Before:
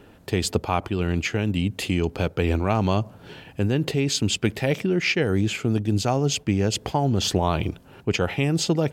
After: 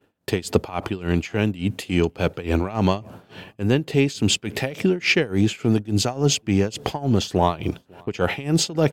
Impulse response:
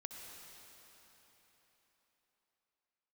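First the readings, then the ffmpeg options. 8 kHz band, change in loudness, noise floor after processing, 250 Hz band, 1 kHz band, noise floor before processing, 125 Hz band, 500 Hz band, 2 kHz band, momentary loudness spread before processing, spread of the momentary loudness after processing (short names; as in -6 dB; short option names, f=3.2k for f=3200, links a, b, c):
+1.5 dB, +1.5 dB, -60 dBFS, +2.0 dB, 0.0 dB, -50 dBFS, 0.0 dB, +2.0 dB, +1.5 dB, 5 LU, 9 LU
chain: -filter_complex "[0:a]highpass=f=120:p=1,agate=range=-33dB:threshold=-40dB:ratio=3:detection=peak,asplit=2[a][b];[b]asoftclip=type=tanh:threshold=-19dB,volume=-9dB[c];[a][c]amix=inputs=2:normalize=0,tremolo=f=3.5:d=0.89,asplit=2[d][e];[e]adelay=548.1,volume=-28dB,highshelf=f=4k:g=-12.3[f];[d][f]amix=inputs=2:normalize=0,volume=4.5dB"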